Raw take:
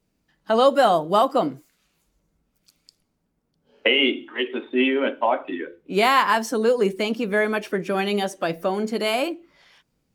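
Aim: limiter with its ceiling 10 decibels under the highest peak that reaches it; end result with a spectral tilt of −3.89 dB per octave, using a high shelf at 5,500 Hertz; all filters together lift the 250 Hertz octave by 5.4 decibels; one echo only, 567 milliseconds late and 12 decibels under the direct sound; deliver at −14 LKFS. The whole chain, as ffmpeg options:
ffmpeg -i in.wav -af "equalizer=frequency=250:width_type=o:gain=6.5,highshelf=frequency=5500:gain=-7.5,alimiter=limit=-15dB:level=0:latency=1,aecho=1:1:567:0.251,volume=10.5dB" out.wav

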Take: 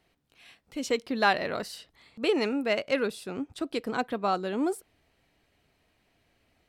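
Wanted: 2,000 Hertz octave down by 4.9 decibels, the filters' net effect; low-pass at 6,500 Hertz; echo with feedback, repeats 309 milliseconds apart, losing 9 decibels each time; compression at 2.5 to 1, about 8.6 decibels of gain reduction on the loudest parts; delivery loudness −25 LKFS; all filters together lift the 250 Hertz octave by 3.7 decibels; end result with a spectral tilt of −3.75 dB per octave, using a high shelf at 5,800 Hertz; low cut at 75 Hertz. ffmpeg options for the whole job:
ffmpeg -i in.wav -af "highpass=75,lowpass=6500,equalizer=frequency=250:width_type=o:gain=4.5,equalizer=frequency=2000:width_type=o:gain=-7.5,highshelf=frequency=5800:gain=8,acompressor=threshold=-33dB:ratio=2.5,aecho=1:1:309|618|927|1236:0.355|0.124|0.0435|0.0152,volume=10dB" out.wav

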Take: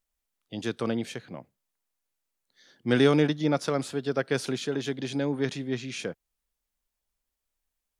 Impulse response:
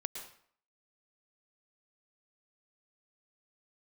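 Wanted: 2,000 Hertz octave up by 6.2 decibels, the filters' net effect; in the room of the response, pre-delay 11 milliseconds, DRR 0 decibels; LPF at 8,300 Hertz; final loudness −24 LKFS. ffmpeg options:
-filter_complex "[0:a]lowpass=8300,equalizer=frequency=2000:width_type=o:gain=8,asplit=2[link_01][link_02];[1:a]atrim=start_sample=2205,adelay=11[link_03];[link_02][link_03]afir=irnorm=-1:irlink=0,volume=0dB[link_04];[link_01][link_04]amix=inputs=2:normalize=0,volume=0.5dB"

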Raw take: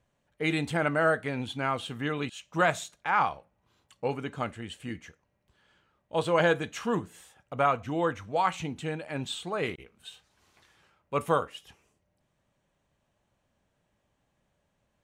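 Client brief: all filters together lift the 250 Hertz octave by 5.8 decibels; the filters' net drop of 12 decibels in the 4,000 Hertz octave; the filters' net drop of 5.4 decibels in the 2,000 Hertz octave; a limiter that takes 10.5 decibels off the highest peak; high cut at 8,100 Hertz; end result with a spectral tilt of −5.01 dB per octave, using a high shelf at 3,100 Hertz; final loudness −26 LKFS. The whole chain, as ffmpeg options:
ffmpeg -i in.wav -af "lowpass=8100,equalizer=frequency=250:width_type=o:gain=8,equalizer=frequency=2000:width_type=o:gain=-3.5,highshelf=frequency=3100:gain=-8,equalizer=frequency=4000:width_type=o:gain=-9,volume=8dB,alimiter=limit=-14.5dB:level=0:latency=1" out.wav

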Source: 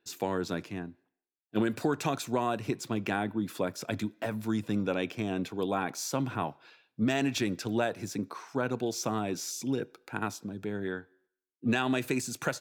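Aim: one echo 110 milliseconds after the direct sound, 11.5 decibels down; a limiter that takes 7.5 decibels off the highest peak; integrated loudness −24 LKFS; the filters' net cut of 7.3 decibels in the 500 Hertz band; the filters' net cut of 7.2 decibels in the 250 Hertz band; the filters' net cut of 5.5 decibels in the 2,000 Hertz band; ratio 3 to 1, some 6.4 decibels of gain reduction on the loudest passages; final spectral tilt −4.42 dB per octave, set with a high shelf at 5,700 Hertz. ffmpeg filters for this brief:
ffmpeg -i in.wav -af "equalizer=frequency=250:width_type=o:gain=-7,equalizer=frequency=500:width_type=o:gain=-7,equalizer=frequency=2000:width_type=o:gain=-6.5,highshelf=frequency=5700:gain=-6.5,acompressor=threshold=-38dB:ratio=3,alimiter=level_in=6.5dB:limit=-24dB:level=0:latency=1,volume=-6.5dB,aecho=1:1:110:0.266,volume=19dB" out.wav

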